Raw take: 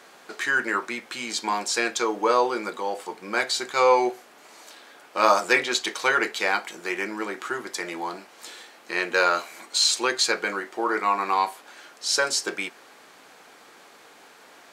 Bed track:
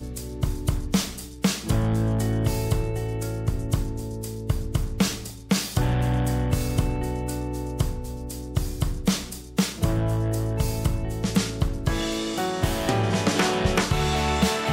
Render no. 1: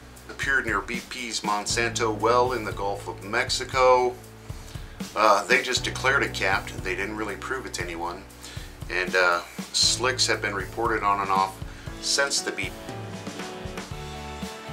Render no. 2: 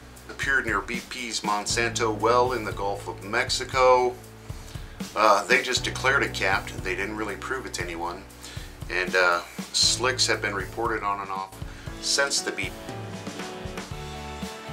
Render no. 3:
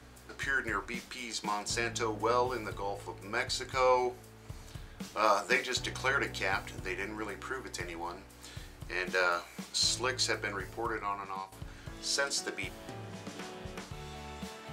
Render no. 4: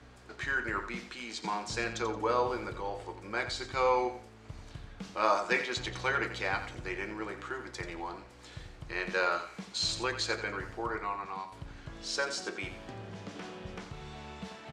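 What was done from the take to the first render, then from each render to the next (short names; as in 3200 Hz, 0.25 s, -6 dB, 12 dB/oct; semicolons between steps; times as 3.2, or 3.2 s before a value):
add bed track -13 dB
10.68–11.52 fade out linear, to -13.5 dB
gain -8.5 dB
air absorption 77 m; on a send: feedback echo 87 ms, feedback 27%, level -10.5 dB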